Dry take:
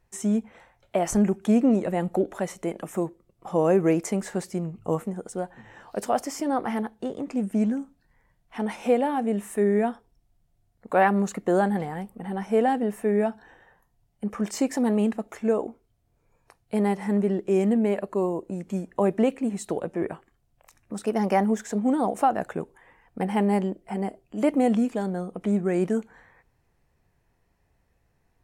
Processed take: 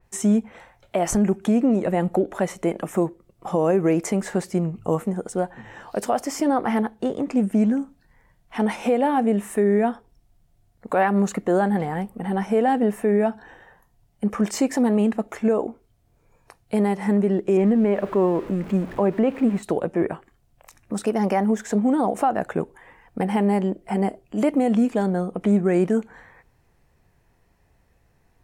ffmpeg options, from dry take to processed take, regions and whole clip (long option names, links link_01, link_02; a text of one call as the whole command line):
ffmpeg -i in.wav -filter_complex "[0:a]asettb=1/sr,asplit=3[link_01][link_02][link_03];[link_01]atrim=end=17.574[link_04];[link_02]atrim=start=17.57:end=19.63,asetpts=PTS-STARTPTS,afade=type=in:duration=0.004:curve=qsin,afade=type=out:start_time=2.056:duration=0.004:curve=qsin,aeval=exprs='val(0)+0.5*0.0119*sgn(val(0))':channel_layout=same,acrossover=split=3000[link_05][link_06];[link_06]acompressor=threshold=-58dB:ratio=4:attack=1:release=60[link_07];[link_05][link_07]amix=inputs=2:normalize=0[link_08];[link_03]atrim=start=19.626[link_09];[link_04][link_08]acrossfade=duration=0.004:curve1=hsin:curve2=qsin[link_10];[link_10][link_09]acrossfade=duration=0.004:curve1=qsin:curve2=hsin,alimiter=limit=-17.5dB:level=0:latency=1:release=196,adynamicequalizer=threshold=0.00282:dfrequency=3300:dqfactor=0.7:tfrequency=3300:tqfactor=0.7:attack=5:release=100:ratio=0.375:range=2:mode=cutabove:tftype=highshelf,volume=6.5dB" out.wav